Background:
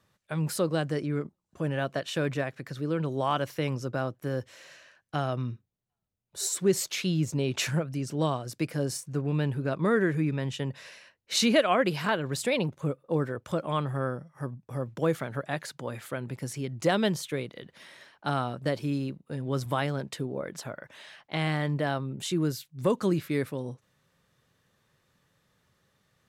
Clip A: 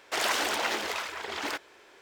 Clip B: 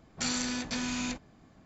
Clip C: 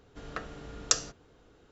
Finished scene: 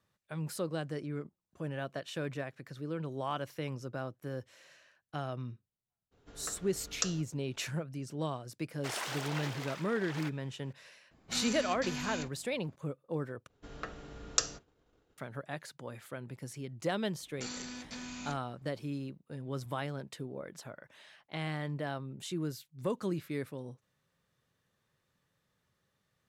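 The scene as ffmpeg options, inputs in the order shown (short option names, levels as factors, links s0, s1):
-filter_complex "[3:a]asplit=2[s0][s1];[2:a]asplit=2[s2][s3];[0:a]volume=0.376[s4];[s1]agate=range=0.0224:threshold=0.002:ratio=3:release=100:detection=peak[s5];[s4]asplit=2[s6][s7];[s6]atrim=end=13.474[s8];[s5]atrim=end=1.71,asetpts=PTS-STARTPTS,volume=0.668[s9];[s7]atrim=start=15.176[s10];[s0]atrim=end=1.71,asetpts=PTS-STARTPTS,volume=0.398,afade=t=in:d=0.02,afade=t=out:st=1.69:d=0.02,adelay=6110[s11];[1:a]atrim=end=2.01,asetpts=PTS-STARTPTS,volume=0.282,afade=t=in:d=0.004:c=hsin,afade=t=out:st=2.006:d=0.004:c=hsin,adelay=8720[s12];[s2]atrim=end=1.65,asetpts=PTS-STARTPTS,volume=0.501,afade=t=in:d=0.004:c=hsin,afade=t=out:st=1.646:d=0.004:c=hsin,adelay=11110[s13];[s3]atrim=end=1.65,asetpts=PTS-STARTPTS,volume=0.299,afade=t=in:d=0.004:c=hsin,afade=t=out:st=1.646:d=0.004:c=hsin,adelay=17200[s14];[s8][s9]acrossfade=d=0.004:c1=hsin:c2=hsin[s15];[s15][s10]acrossfade=d=0.004:c1=hsin:c2=hsin[s16];[s16][s11][s12][s13][s14]amix=inputs=5:normalize=0"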